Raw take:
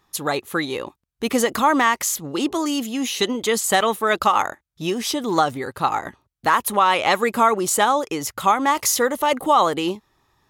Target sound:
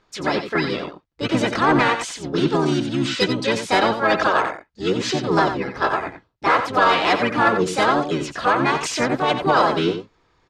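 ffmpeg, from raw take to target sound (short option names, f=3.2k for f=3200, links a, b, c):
-filter_complex "[0:a]lowpass=f=5.1k:w=0.5412,lowpass=f=5.1k:w=1.3066,aecho=1:1:3:0.49,asplit=4[a][b][c][d];[b]asetrate=22050,aresample=44100,atempo=2,volume=-4dB[e];[c]asetrate=35002,aresample=44100,atempo=1.25992,volume=-8dB[f];[d]asetrate=55563,aresample=44100,atempo=0.793701,volume=-1dB[g];[a][e][f][g]amix=inputs=4:normalize=0,acontrast=22,asplit=2[h][i];[i]aecho=0:1:89:0.355[j];[h][j]amix=inputs=2:normalize=0,volume=-7.5dB"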